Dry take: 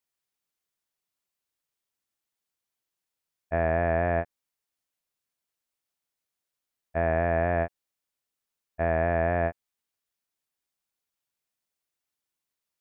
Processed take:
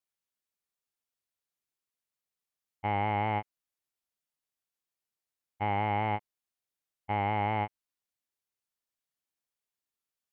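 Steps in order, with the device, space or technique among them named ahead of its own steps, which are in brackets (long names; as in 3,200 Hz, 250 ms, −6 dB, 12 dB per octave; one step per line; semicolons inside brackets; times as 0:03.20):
nightcore (speed change +24%)
level −4.5 dB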